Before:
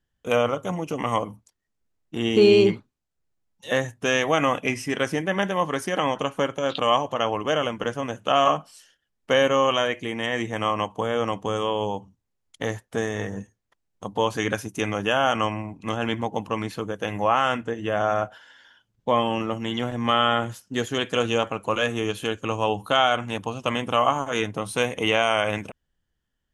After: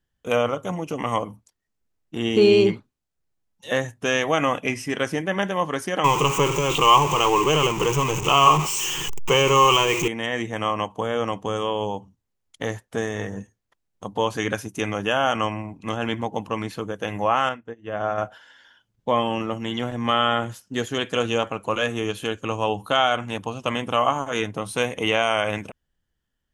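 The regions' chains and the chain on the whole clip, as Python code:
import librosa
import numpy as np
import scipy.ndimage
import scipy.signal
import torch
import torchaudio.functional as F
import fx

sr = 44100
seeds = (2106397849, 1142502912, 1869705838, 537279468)

y = fx.chain(x, sr, fx.zero_step(step_db=-23.5),
    fx.ripple_eq(per_octave=0.72, db=16), at=(6.04, 10.08))
y = fx.chain(y, sr, fx.lowpass(hz=2800.0, slope=6),
    fx.upward_expand(threshold_db=-35.0, expansion=2.5), at=(17.49, 18.18))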